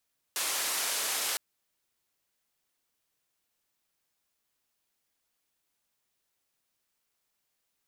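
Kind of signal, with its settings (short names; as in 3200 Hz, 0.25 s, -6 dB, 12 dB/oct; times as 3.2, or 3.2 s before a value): noise band 460–12000 Hz, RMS -31.5 dBFS 1.01 s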